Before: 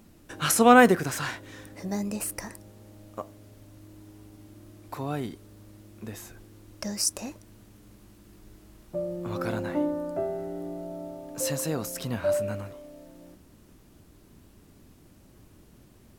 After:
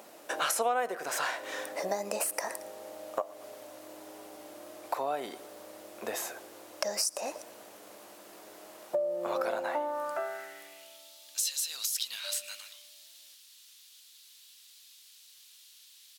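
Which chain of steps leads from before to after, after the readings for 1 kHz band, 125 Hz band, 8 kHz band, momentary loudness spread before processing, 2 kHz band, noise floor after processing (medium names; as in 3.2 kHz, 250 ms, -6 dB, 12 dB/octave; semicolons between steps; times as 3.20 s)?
-6.0 dB, -24.5 dB, -1.5 dB, 22 LU, -7.0 dB, -57 dBFS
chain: feedback delay 113 ms, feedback 41%, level -23 dB; high-pass sweep 610 Hz -> 3.7 kHz, 9.53–11.12 s; compression 6:1, threshold -37 dBFS, peak gain reduction 26 dB; trim +8 dB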